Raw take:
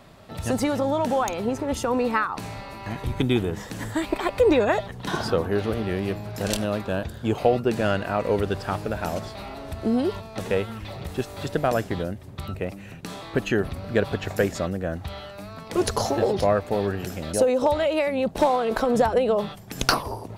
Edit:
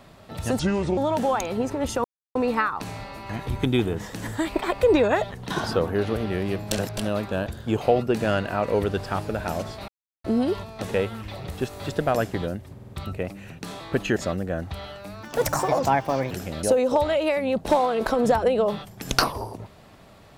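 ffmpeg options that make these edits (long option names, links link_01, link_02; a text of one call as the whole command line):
ffmpeg -i in.wav -filter_complex "[0:a]asplit=14[link_01][link_02][link_03][link_04][link_05][link_06][link_07][link_08][link_09][link_10][link_11][link_12][link_13][link_14];[link_01]atrim=end=0.594[link_15];[link_02]atrim=start=0.59:end=0.85,asetpts=PTS-STARTPTS,asetrate=29988,aresample=44100[link_16];[link_03]atrim=start=0.846:end=1.92,asetpts=PTS-STARTPTS,afade=type=out:start_time=1.07:duration=0.004:curve=hsin,apad=pad_dur=0.31[link_17];[link_04]atrim=start=1.92:end=6.282,asetpts=PTS-STARTPTS,afade=type=in:duration=0.004:curve=hsin[link_18];[link_05]atrim=start=6.278:end=6.542,asetpts=PTS-STARTPTS,areverse[link_19];[link_06]atrim=start=6.538:end=9.45,asetpts=PTS-STARTPTS,afade=type=out:start_time=2.908:duration=0.004:curve=hsin[link_20];[link_07]atrim=start=9.45:end=9.81,asetpts=PTS-STARTPTS,volume=0[link_21];[link_08]atrim=start=9.81:end=12.362,asetpts=PTS-STARTPTS,afade=type=in:duration=0.004:curve=hsin[link_22];[link_09]atrim=start=12.308:end=12.362[link_23];[link_10]atrim=start=12.308:end=12.362[link_24];[link_11]atrim=start=12.308:end=13.582[link_25];[link_12]atrim=start=14.498:end=15.574[link_26];[link_13]atrim=start=15.57:end=17.01,asetpts=PTS-STARTPTS,asetrate=59094,aresample=44100,atrim=end_sample=47391,asetpts=PTS-STARTPTS[link_27];[link_14]atrim=start=17.006[link_28];[link_15][link_16]acrossfade=duration=0.004:curve1=hsin:curve2=hsin[link_29];[link_17][link_18]concat=n=2:v=0:a=1[link_30];[link_29][link_30]acrossfade=duration=0.004:curve1=hsin:curve2=hsin[link_31];[link_31][link_19]acrossfade=duration=0.004:curve1=hsin:curve2=hsin[link_32];[link_20][link_21][link_22]concat=n=3:v=0:a=1[link_33];[link_32][link_33]acrossfade=duration=0.004:curve1=hsin:curve2=hsin[link_34];[link_34][link_23]acrossfade=duration=0.004:curve1=hsin:curve2=hsin[link_35];[link_35][link_24]acrossfade=duration=0.004:curve1=hsin:curve2=hsin[link_36];[link_36][link_25]acrossfade=duration=0.004:curve1=hsin:curve2=hsin[link_37];[link_37][link_26]acrossfade=duration=0.004:curve1=hsin:curve2=hsin[link_38];[link_38][link_27]acrossfade=duration=0.004:curve1=hsin:curve2=hsin[link_39];[link_39][link_28]acrossfade=duration=0.004:curve1=hsin:curve2=hsin" out.wav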